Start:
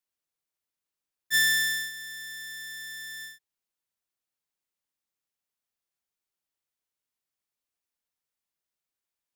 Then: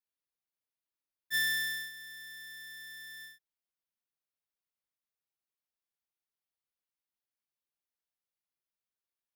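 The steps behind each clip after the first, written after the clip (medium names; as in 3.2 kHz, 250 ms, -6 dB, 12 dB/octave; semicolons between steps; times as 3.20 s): peaking EQ 7.4 kHz -10 dB 0.37 oct; trim -7 dB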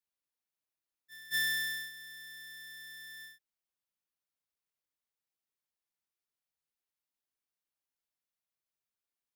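pre-echo 220 ms -20 dB; trim -1 dB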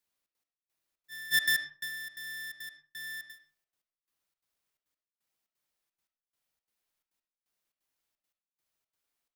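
trance gate "xxx.x...xxx.x" 173 bpm -60 dB; reverberation RT60 0.40 s, pre-delay 25 ms, DRR 7 dB; trim +7 dB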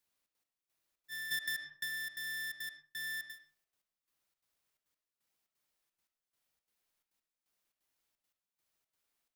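compression 6:1, threshold -36 dBFS, peak gain reduction 13.5 dB; trim +1 dB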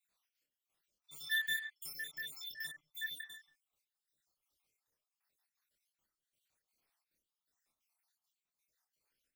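random holes in the spectrogram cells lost 65%; chorus voices 2, 0.37 Hz, delay 27 ms, depth 2.7 ms; trim +6.5 dB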